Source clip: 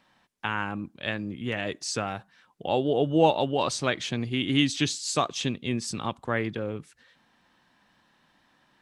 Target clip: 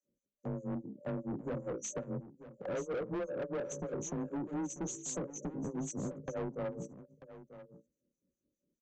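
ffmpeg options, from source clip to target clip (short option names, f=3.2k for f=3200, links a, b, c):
-filter_complex "[0:a]afftdn=nr=13:nf=-45,afftfilt=real='re*(1-between(b*sr/4096,570,5800))':imag='im*(1-between(b*sr/4096,570,5800))':win_size=4096:overlap=0.75,bandreject=f=60:t=h:w=6,bandreject=f=120:t=h:w=6,bandreject=f=180:t=h:w=6,bandreject=f=240:t=h:w=6,bandreject=f=300:t=h:w=6,bandreject=f=360:t=h:w=6,bandreject=f=420:t=h:w=6,bandreject=f=480:t=h:w=6,bandreject=f=540:t=h:w=6,agate=range=-10dB:threshold=-42dB:ratio=16:detection=peak,equalizer=f=710:t=o:w=0.44:g=14.5,acontrast=80,acrossover=split=800[a][b];[a]aeval=exprs='val(0)*(1-1/2+1/2*cos(2*PI*4.9*n/s))':c=same[c];[b]aeval=exprs='val(0)*(1-1/2-1/2*cos(2*PI*4.9*n/s))':c=same[d];[c][d]amix=inputs=2:normalize=0,acompressor=threshold=-38dB:ratio=3,afreqshift=27,aresample=16000,asoftclip=type=tanh:threshold=-40dB,aresample=44100,aecho=1:1:940:0.188,adynamicequalizer=threshold=0.00112:dfrequency=1800:dqfactor=0.7:tfrequency=1800:tqfactor=0.7:attack=5:release=100:ratio=0.375:range=1.5:mode=cutabove:tftype=highshelf,volume=6.5dB"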